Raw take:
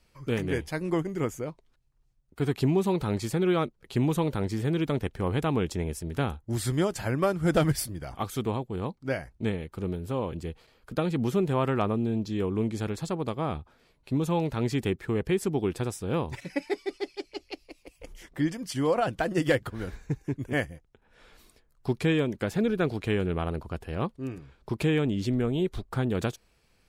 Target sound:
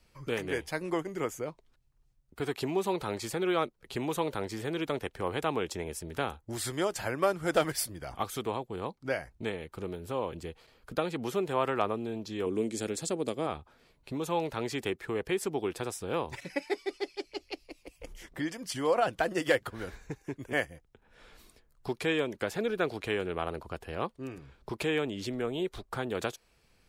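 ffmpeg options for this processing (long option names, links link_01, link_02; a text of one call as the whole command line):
ffmpeg -i in.wav -filter_complex "[0:a]asettb=1/sr,asplit=3[link_01][link_02][link_03];[link_01]atrim=end=12.464[link_04];[link_02]atrim=start=12.46:end=13.47,asetpts=PTS-STARTPTS,afade=type=in:duration=0.004:curve=qsin,afade=type=out:start_time=1.006:duration=0.004:curve=qsin,equalizer=frequency=250:width_type=o:width=1:gain=7,equalizer=frequency=500:width_type=o:width=1:gain=3,equalizer=frequency=1000:width_type=o:width=1:gain=-9,equalizer=frequency=8000:width_type=o:width=1:gain=10[link_05];[link_03]atrim=start=13.466[link_06];[link_04][link_05]acrossfade=duration=0.004:curve1=hsin:curve2=qsin[link_07];[link_07][link_06]acrossfade=duration=0.004:curve1=qsin:curve2=hsin,acrossover=split=360|6900[link_08][link_09][link_10];[link_08]acompressor=threshold=-43dB:ratio=4[link_11];[link_11][link_09][link_10]amix=inputs=3:normalize=0" out.wav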